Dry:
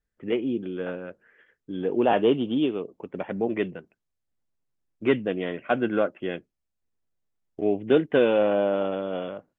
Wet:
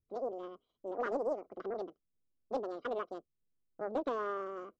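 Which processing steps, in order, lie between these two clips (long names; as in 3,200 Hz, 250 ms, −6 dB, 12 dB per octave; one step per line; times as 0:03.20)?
wrong playback speed 7.5 ips tape played at 15 ips
moving average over 50 samples
highs frequency-modulated by the lows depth 0.25 ms
level −2 dB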